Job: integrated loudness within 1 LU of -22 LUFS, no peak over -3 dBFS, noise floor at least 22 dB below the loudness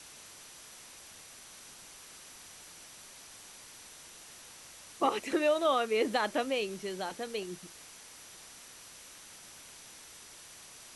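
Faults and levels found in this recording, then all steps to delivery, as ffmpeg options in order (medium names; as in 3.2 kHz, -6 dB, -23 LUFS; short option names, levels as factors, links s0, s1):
steady tone 5.9 kHz; tone level -59 dBFS; noise floor -52 dBFS; noise floor target -54 dBFS; loudness -31.5 LUFS; peak level -16.5 dBFS; loudness target -22.0 LUFS
-> -af "bandreject=f=5900:w=30"
-af "afftdn=nr=6:nf=-52"
-af "volume=2.99"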